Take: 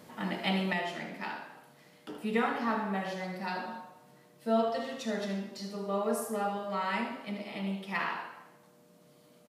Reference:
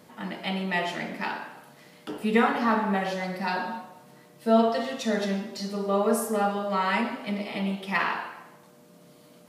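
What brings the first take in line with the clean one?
inverse comb 77 ms -9.5 dB; trim 0 dB, from 0.73 s +7.5 dB

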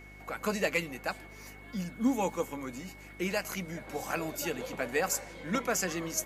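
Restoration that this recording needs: clip repair -18.5 dBFS; de-hum 50.5 Hz, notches 8; band-stop 2.2 kHz, Q 30

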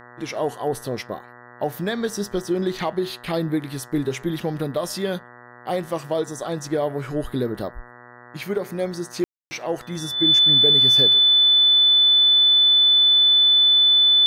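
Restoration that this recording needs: de-hum 121.5 Hz, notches 16; band-stop 3.5 kHz, Q 30; room tone fill 9.24–9.51 s

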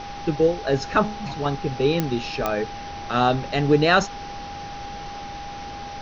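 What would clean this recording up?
de-click; band-stop 810 Hz, Q 30; noise print and reduce 30 dB

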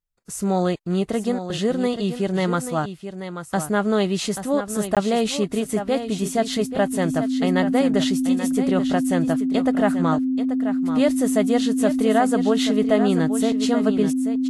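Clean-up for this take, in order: band-stop 260 Hz, Q 30; interpolate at 4.95 s, 17 ms; inverse comb 834 ms -10 dB

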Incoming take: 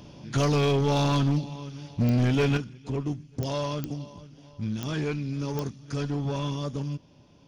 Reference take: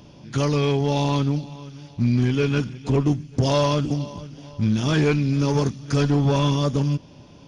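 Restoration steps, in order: clip repair -18.5 dBFS; de-click; trim 0 dB, from 2.57 s +10 dB

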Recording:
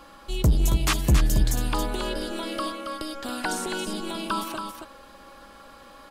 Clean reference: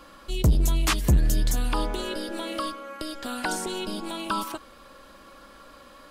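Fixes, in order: band-stop 820 Hz, Q 30; inverse comb 275 ms -6.5 dB

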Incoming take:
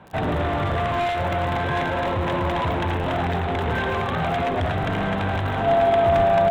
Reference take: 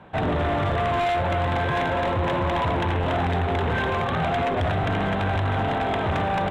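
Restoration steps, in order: de-click; band-stop 680 Hz, Q 30; 6.16–6.28 s: high-pass 140 Hz 24 dB/octave; inverse comb 108 ms -11.5 dB

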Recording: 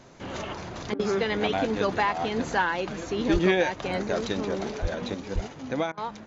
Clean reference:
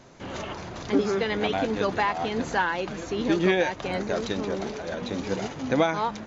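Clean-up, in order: 3.32–3.44 s: high-pass 140 Hz 24 dB/octave; 4.81–4.93 s: high-pass 140 Hz 24 dB/octave; 5.34–5.46 s: high-pass 140 Hz 24 dB/octave; interpolate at 0.94/5.92 s, 53 ms; trim 0 dB, from 5.14 s +6 dB

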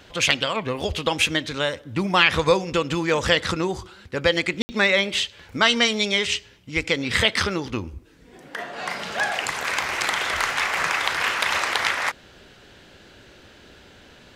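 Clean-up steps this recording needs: room tone fill 4.62–4.69 s

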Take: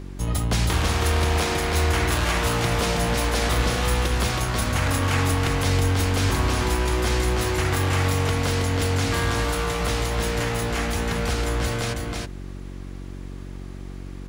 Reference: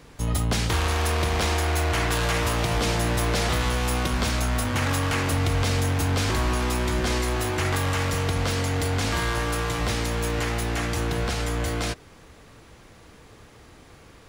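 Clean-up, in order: de-hum 46.7 Hz, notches 8; inverse comb 322 ms -3.5 dB

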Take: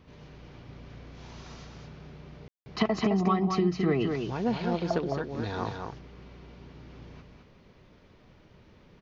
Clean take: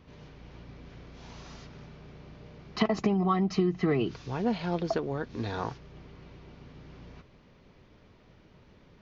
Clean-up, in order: room tone fill 2.48–2.66 s; inverse comb 214 ms -5 dB

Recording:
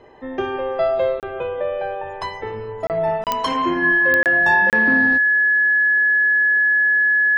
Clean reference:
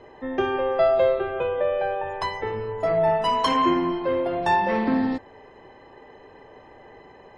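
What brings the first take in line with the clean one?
de-click; band-stop 1.7 kHz, Q 30; interpolate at 1.20/2.87/3.24/4.23/4.70 s, 28 ms

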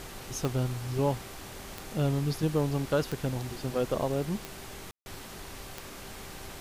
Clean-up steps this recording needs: de-click; de-hum 389.8 Hz, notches 19; room tone fill 4.91–5.06 s; noise reduction 30 dB, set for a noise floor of -44 dBFS

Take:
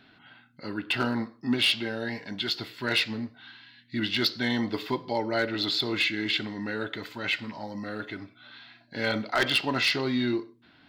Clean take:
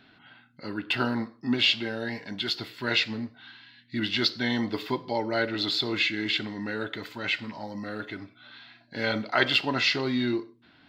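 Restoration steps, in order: clip repair -17.5 dBFS

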